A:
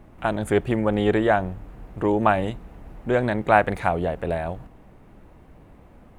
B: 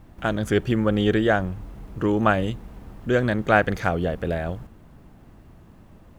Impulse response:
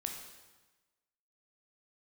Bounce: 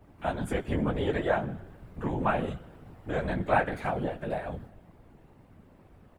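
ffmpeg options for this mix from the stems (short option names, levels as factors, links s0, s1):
-filter_complex "[0:a]volume=1.12,asplit=2[s0][s1];[1:a]bandreject=f=6300:w=6,adelay=10,volume=0.596,asplit=2[s2][s3];[s3]volume=0.447[s4];[s1]apad=whole_len=273371[s5];[s2][s5]sidechaincompress=threshold=0.0794:ratio=8:attack=16:release=595[s6];[2:a]atrim=start_sample=2205[s7];[s4][s7]afir=irnorm=-1:irlink=0[s8];[s0][s6][s8]amix=inputs=3:normalize=0,flanger=delay=16:depth=2.2:speed=0.73,afftfilt=real='hypot(re,im)*cos(2*PI*random(0))':imag='hypot(re,im)*sin(2*PI*random(1))':win_size=512:overlap=0.75"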